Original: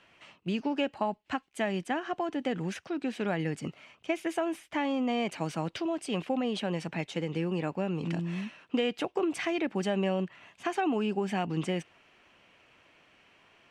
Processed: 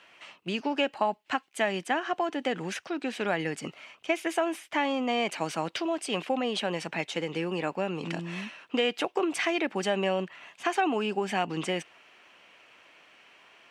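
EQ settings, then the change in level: HPF 540 Hz 6 dB/oct; +6.0 dB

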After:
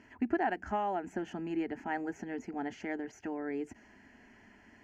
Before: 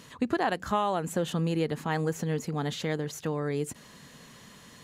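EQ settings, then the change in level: dynamic EQ 6300 Hz, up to +7 dB, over -59 dBFS, Q 3.1; air absorption 220 m; fixed phaser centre 760 Hz, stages 8; -1.5 dB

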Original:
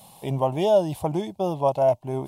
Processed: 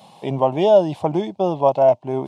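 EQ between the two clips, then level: HPF 180 Hz 12 dB/oct; tape spacing loss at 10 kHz 30 dB; high shelf 3000 Hz +12 dB; +7.0 dB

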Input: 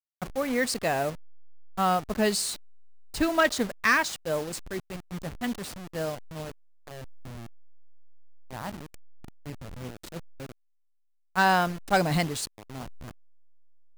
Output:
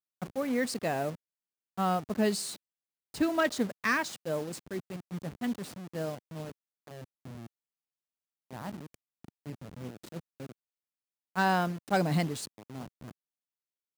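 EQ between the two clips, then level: HPF 150 Hz 12 dB/oct; low shelf 380 Hz +9.5 dB; -7.0 dB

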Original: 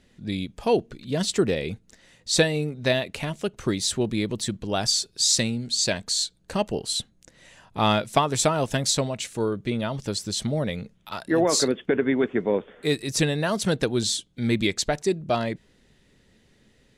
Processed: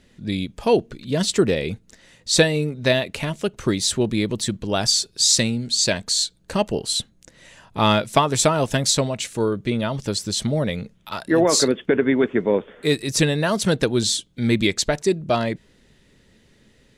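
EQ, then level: notch 750 Hz, Q 17; +4.0 dB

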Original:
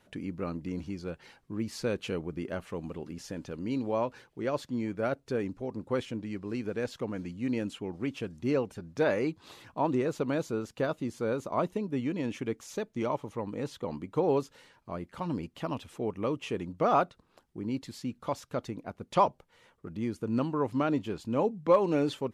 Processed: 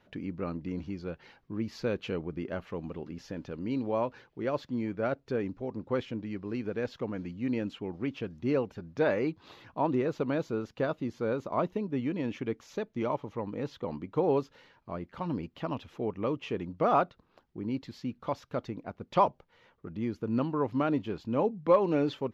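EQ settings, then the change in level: running mean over 5 samples; 0.0 dB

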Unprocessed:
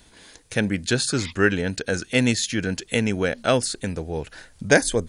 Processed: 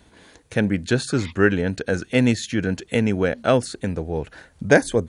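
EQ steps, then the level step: HPF 47 Hz; high shelf 2500 Hz -11 dB; notch 5000 Hz, Q 18; +3.0 dB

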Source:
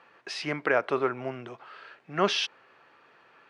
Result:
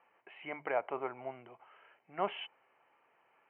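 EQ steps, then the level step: notches 50/100/150 Hz; dynamic EQ 780 Hz, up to +5 dB, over -40 dBFS, Q 1.5; rippled Chebyshev low-pass 3100 Hz, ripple 9 dB; -7.0 dB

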